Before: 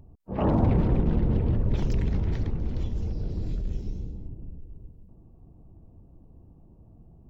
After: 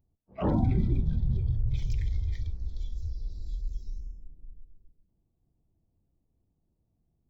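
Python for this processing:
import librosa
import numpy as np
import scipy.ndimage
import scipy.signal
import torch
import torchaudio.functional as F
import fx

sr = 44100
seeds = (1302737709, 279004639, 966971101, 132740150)

y = fx.rev_freeverb(x, sr, rt60_s=2.4, hf_ratio=0.8, predelay_ms=10, drr_db=10.5)
y = fx.noise_reduce_blind(y, sr, reduce_db=20)
y = y * librosa.db_to_amplitude(-3.0)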